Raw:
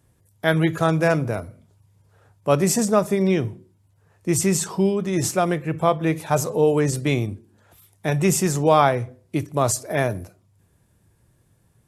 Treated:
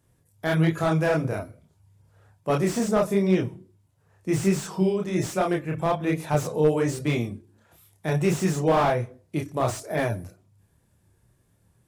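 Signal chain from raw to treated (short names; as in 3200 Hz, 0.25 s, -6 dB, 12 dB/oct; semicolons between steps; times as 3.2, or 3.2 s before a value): chorus voices 2, 1.2 Hz, delay 29 ms, depth 3.6 ms; slew limiter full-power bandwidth 110 Hz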